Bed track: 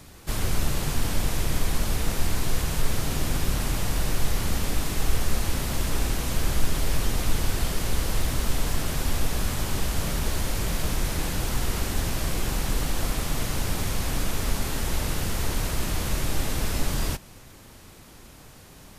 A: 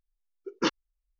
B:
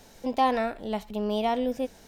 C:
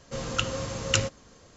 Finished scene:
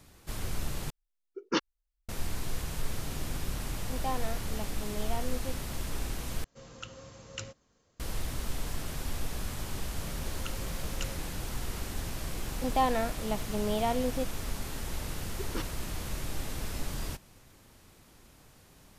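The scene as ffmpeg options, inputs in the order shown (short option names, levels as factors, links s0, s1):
-filter_complex "[1:a]asplit=2[s0][s1];[2:a]asplit=2[s2][s3];[3:a]asplit=2[s4][s5];[0:a]volume=0.335[s6];[s5]aeval=exprs='val(0)*gte(abs(val(0)),0.00631)':c=same[s7];[s1]acompressor=threshold=0.0282:ratio=6:attack=3.2:release=140:knee=1:detection=peak[s8];[s6]asplit=3[s9][s10][s11];[s9]atrim=end=0.904[s12];[s0]atrim=end=1.19,asetpts=PTS-STARTPTS,volume=0.75[s13];[s10]atrim=start=2.086:end=6.444[s14];[s4]atrim=end=1.56,asetpts=PTS-STARTPTS,volume=0.15[s15];[s11]atrim=start=7.996[s16];[s2]atrim=end=2.07,asetpts=PTS-STARTPTS,volume=0.266,afade=t=in:d=0.004:c=hsin,afade=t=out:st=2.066:d=0.004:c=hsin,adelay=3660[s17];[s7]atrim=end=1.56,asetpts=PTS-STARTPTS,volume=0.158,afade=t=in:d=0.004:c=hsin,afade=t=out:st=1.556:d=0.004:c=hsin,adelay=10070[s18];[s3]atrim=end=2.07,asetpts=PTS-STARTPTS,volume=0.668,afade=t=in:d=0.004:c=hsin,afade=t=out:st=2.066:d=0.004:c=hsin,adelay=12380[s19];[s8]atrim=end=1.19,asetpts=PTS-STARTPTS,volume=0.794,afade=t=in:d=0.004:c=hsin,afade=t=out:st=1.186:d=0.004:c=hsin,adelay=14930[s20];[s12][s13]acrossfade=d=0.004:c1=hsin:c2=hsin[s21];[s21][s14]acrossfade=d=0.004:c1=hsin:c2=hsin[s22];[s22][s15]acrossfade=d=0.004:c1=hsin:c2=hsin[s23];[s23][s16]acrossfade=d=0.004:c1=hsin:c2=hsin[s24];[s24][s17][s18][s19][s20]amix=inputs=5:normalize=0"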